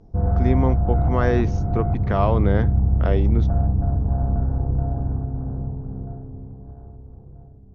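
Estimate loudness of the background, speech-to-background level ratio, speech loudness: -22.5 LUFS, -3.0 dB, -25.5 LUFS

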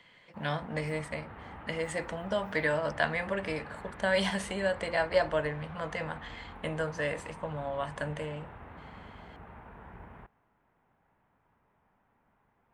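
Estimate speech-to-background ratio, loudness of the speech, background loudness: 14.5 dB, -33.0 LUFS, -47.5 LUFS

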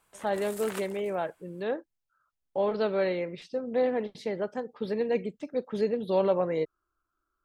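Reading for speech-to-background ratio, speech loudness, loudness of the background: 13.0 dB, -30.5 LUFS, -43.5 LUFS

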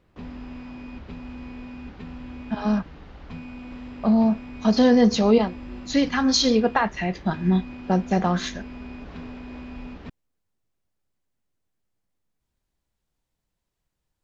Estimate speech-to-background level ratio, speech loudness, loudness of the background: 17.5 dB, -22.0 LUFS, -39.5 LUFS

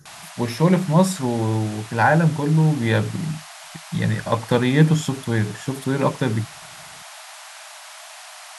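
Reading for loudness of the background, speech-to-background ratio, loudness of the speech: -38.0 LUFS, 17.5 dB, -20.5 LUFS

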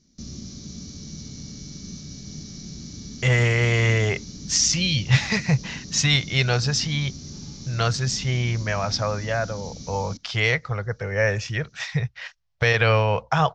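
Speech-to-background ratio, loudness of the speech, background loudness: 15.0 dB, -22.5 LUFS, -37.5 LUFS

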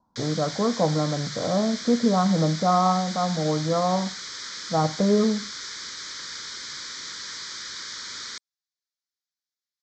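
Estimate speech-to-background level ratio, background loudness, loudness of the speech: 9.5 dB, -33.5 LUFS, -24.0 LUFS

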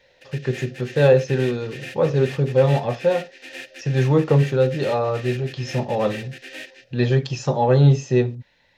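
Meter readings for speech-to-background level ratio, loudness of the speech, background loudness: 16.5 dB, -20.5 LUFS, -37.0 LUFS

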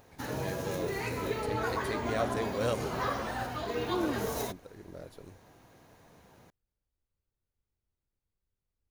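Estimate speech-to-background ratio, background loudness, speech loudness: -4.0 dB, -34.5 LUFS, -38.5 LUFS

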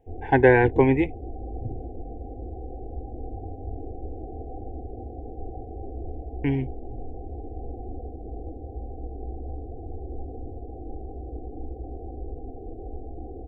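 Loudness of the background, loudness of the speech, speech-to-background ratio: -38.5 LUFS, -21.0 LUFS, 17.5 dB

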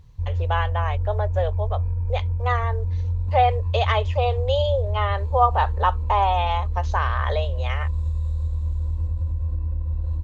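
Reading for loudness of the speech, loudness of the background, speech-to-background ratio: -25.0 LUFS, -26.5 LUFS, 1.5 dB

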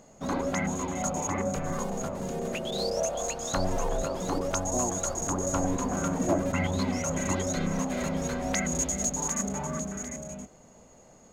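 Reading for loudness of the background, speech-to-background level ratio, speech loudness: -30.0 LUFS, -4.5 dB, -34.5 LUFS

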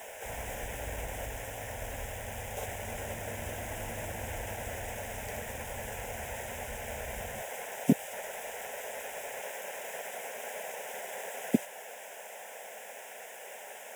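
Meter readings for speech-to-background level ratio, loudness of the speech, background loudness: 8.0 dB, -38.5 LUFS, -46.5 LUFS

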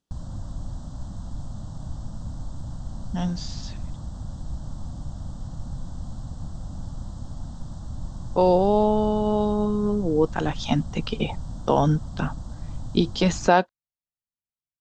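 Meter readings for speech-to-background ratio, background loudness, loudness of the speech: 14.0 dB, -37.5 LUFS, -23.5 LUFS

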